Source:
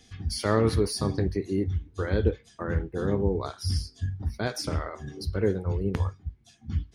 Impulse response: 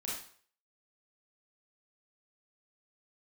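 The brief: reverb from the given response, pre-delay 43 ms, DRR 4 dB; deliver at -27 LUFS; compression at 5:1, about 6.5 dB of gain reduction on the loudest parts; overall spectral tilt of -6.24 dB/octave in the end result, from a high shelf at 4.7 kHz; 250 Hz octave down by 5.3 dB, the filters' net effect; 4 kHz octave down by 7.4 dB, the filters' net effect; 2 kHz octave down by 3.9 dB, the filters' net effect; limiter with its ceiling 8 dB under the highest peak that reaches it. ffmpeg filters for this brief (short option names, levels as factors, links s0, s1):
-filter_complex "[0:a]equalizer=f=250:t=o:g=-7.5,equalizer=f=2000:t=o:g=-3.5,equalizer=f=4000:t=o:g=-5.5,highshelf=f=4700:g=-5.5,acompressor=threshold=0.0398:ratio=5,alimiter=level_in=1.12:limit=0.0631:level=0:latency=1,volume=0.891,asplit=2[s0][s1];[1:a]atrim=start_sample=2205,adelay=43[s2];[s1][s2]afir=irnorm=-1:irlink=0,volume=0.531[s3];[s0][s3]amix=inputs=2:normalize=0,volume=2.66"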